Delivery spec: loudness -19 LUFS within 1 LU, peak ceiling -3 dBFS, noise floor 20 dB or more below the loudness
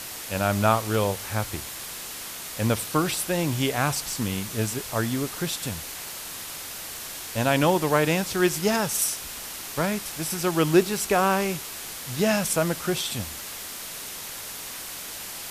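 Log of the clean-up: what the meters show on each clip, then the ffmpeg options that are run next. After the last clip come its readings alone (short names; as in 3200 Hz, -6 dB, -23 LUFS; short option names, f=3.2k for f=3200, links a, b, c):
noise floor -37 dBFS; noise floor target -46 dBFS; loudness -26.0 LUFS; peak -7.0 dBFS; loudness target -19.0 LUFS
-> -af "afftdn=nr=9:nf=-37"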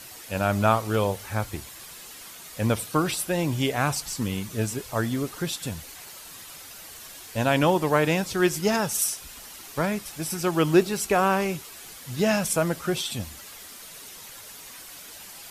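noise floor -44 dBFS; noise floor target -46 dBFS
-> -af "afftdn=nr=6:nf=-44"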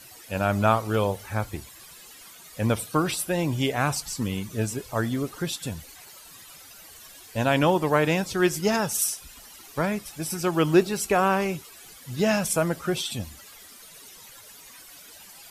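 noise floor -48 dBFS; loudness -25.5 LUFS; peak -7.5 dBFS; loudness target -19.0 LUFS
-> -af "volume=6.5dB,alimiter=limit=-3dB:level=0:latency=1"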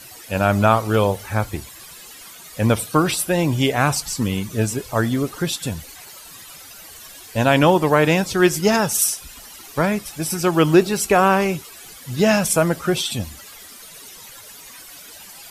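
loudness -19.0 LUFS; peak -3.0 dBFS; noise floor -41 dBFS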